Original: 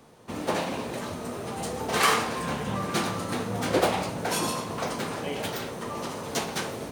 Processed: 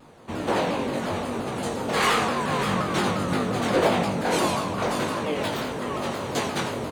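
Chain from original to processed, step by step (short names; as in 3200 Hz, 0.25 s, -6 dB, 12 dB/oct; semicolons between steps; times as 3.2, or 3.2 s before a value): in parallel at -7.5 dB: sine folder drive 10 dB, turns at -8.5 dBFS; on the sum: high shelf 8500 Hz -10.5 dB; notch 5400 Hz, Q 6.6; doubler 21 ms -3.5 dB; on a send: tapped delay 86/587 ms -10/-8 dB; on the sum: shaped vibrato saw down 5.7 Hz, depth 160 cents; gain -7 dB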